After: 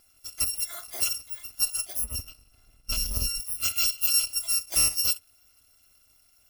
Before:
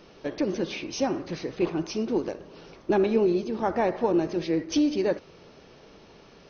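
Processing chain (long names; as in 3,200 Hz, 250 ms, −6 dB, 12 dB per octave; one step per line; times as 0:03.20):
samples in bit-reversed order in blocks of 256 samples
noise reduction from a noise print of the clip's start 10 dB
0:02.04–0:03.40: spectral tilt −2.5 dB per octave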